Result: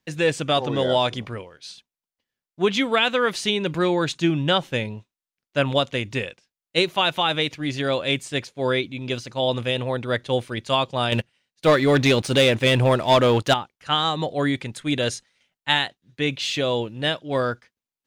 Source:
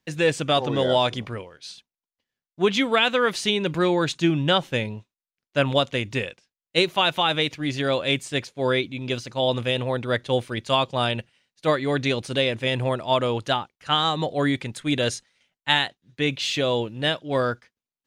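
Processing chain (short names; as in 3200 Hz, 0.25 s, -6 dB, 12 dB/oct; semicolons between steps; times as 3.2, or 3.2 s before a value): 11.12–13.54 sample leveller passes 2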